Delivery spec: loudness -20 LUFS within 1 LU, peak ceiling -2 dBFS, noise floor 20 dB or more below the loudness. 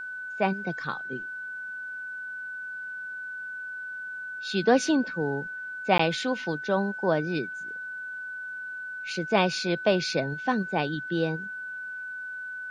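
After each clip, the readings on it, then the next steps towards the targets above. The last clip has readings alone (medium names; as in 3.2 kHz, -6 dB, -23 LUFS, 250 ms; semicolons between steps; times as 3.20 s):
dropouts 1; longest dropout 14 ms; steady tone 1.5 kHz; tone level -34 dBFS; loudness -29.5 LUFS; peak level -8.0 dBFS; loudness target -20.0 LUFS
-> interpolate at 5.98 s, 14 ms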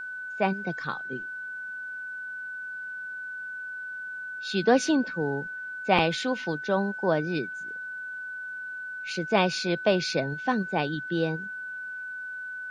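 dropouts 0; steady tone 1.5 kHz; tone level -34 dBFS
-> band-stop 1.5 kHz, Q 30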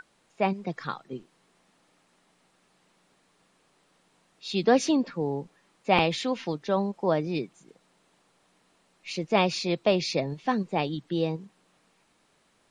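steady tone not found; loudness -27.5 LUFS; peak level -8.5 dBFS; loudness target -20.0 LUFS
-> trim +7.5 dB; peak limiter -2 dBFS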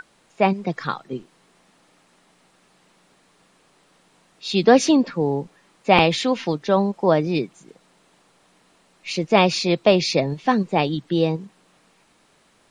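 loudness -20.5 LUFS; peak level -2.0 dBFS; noise floor -60 dBFS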